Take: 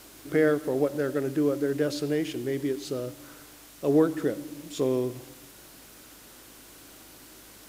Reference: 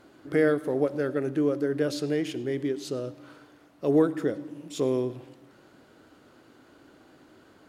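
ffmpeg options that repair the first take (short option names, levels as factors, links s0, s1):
-af "bandreject=f=51.8:t=h:w=4,bandreject=f=103.6:t=h:w=4,bandreject=f=155.4:t=h:w=4,bandreject=f=207.2:t=h:w=4,afwtdn=0.0032"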